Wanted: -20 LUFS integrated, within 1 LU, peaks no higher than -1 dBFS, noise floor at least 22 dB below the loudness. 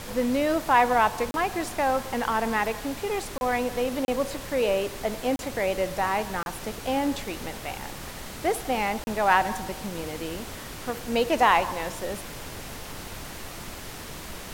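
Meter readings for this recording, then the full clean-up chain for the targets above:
dropouts 6; longest dropout 31 ms; noise floor -39 dBFS; noise floor target -49 dBFS; loudness -26.5 LUFS; peak -6.0 dBFS; loudness target -20.0 LUFS
-> interpolate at 1.31/3.38/4.05/5.36/6.43/9.04, 31 ms; noise print and reduce 10 dB; gain +6.5 dB; limiter -1 dBFS

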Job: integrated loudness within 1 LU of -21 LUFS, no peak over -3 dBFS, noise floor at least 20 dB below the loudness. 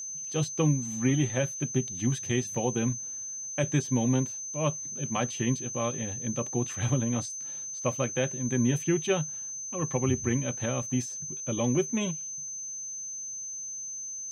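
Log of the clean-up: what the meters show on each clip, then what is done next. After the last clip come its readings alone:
steady tone 6200 Hz; tone level -35 dBFS; loudness -29.5 LUFS; peak -14.0 dBFS; loudness target -21.0 LUFS
-> notch 6200 Hz, Q 30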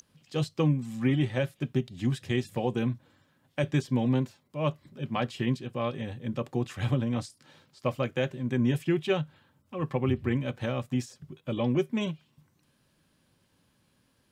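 steady tone none; loudness -30.5 LUFS; peak -14.5 dBFS; loudness target -21.0 LUFS
-> gain +9.5 dB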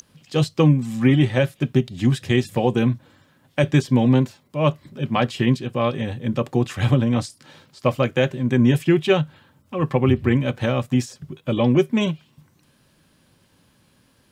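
loudness -21.0 LUFS; peak -5.0 dBFS; noise floor -60 dBFS

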